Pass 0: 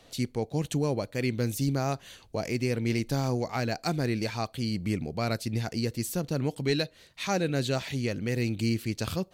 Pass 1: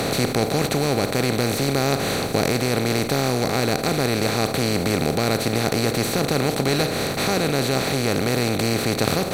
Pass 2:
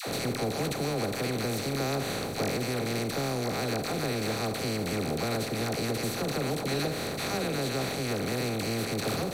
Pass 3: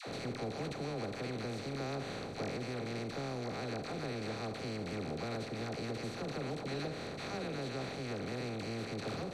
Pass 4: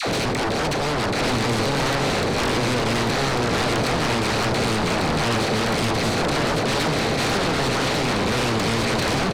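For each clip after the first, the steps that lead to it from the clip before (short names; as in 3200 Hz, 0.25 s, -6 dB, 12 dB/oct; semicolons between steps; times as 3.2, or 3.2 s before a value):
per-bin compression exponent 0.2; vocal rider 0.5 s
dispersion lows, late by 72 ms, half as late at 690 Hz; gain -9 dB
air absorption 88 m; gain -8.5 dB
sine folder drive 13 dB, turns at -26 dBFS; on a send: echo 1.146 s -5 dB; on the sum: gain +6.5 dB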